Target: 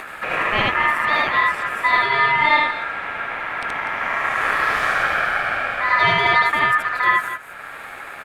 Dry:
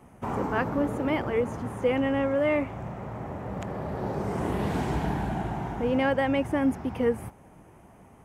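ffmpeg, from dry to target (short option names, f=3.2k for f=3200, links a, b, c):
-af "aecho=1:1:75.8|244.9:1|0.282,acompressor=mode=upward:threshold=-29dB:ratio=2.5,aeval=exprs='val(0)*sin(2*PI*1500*n/s)':c=same,volume=8dB"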